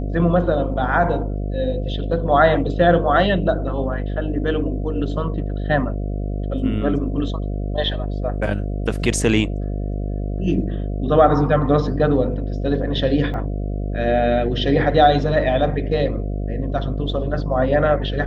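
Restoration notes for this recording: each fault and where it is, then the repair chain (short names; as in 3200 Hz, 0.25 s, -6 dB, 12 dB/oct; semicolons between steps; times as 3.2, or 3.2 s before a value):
buzz 50 Hz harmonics 14 -24 dBFS
13.34 gap 2.1 ms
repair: de-hum 50 Hz, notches 14; interpolate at 13.34, 2.1 ms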